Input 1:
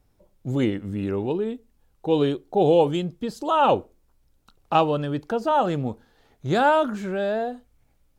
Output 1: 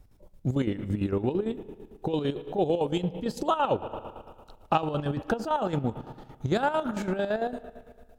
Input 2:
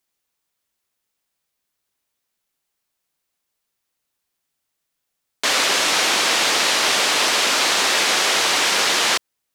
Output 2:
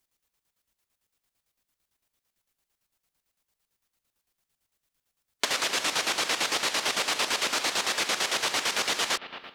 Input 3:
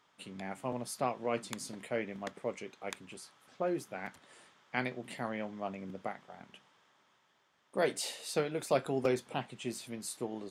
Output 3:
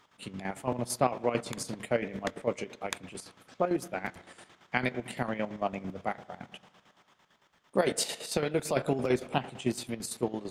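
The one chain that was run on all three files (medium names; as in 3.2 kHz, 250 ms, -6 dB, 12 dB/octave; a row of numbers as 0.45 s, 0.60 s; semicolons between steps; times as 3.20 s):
bass shelf 100 Hz +10 dB; spring tank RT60 1.8 s, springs 33/44 ms, chirp 25 ms, DRR 14.5 dB; compression 5:1, threshold -24 dBFS; square tremolo 8.9 Hz, depth 60%, duty 50%; harmonic-percussive split harmonic -3 dB; peak normalisation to -9 dBFS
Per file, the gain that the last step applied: +4.0 dB, +1.5 dB, +8.0 dB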